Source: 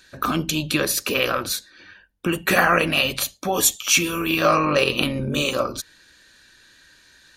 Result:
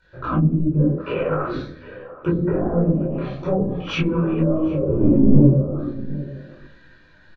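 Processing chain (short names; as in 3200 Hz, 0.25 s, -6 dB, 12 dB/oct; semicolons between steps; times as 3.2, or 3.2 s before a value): 4.89–5.49 sample leveller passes 3; tape spacing loss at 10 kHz 42 dB; soft clip -11 dBFS, distortion -19 dB; flange 0.84 Hz, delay 1.3 ms, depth 4.6 ms, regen -31%; shoebox room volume 860 m³, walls furnished, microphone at 4.8 m; AGC gain up to 4.5 dB; treble ducked by the level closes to 1500 Hz, closed at -14 dBFS; 0.95–1.56 low shelf 340 Hz -10.5 dB; treble ducked by the level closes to 360 Hz, closed at -15 dBFS; outdoor echo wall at 130 m, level -15 dB; detuned doubles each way 26 cents; gain +4.5 dB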